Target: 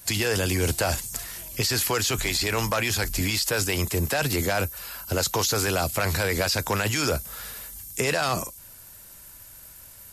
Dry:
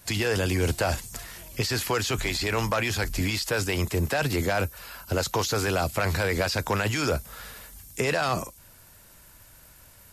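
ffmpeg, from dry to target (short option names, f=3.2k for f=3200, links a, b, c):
-af "highshelf=f=5.2k:g=9.5"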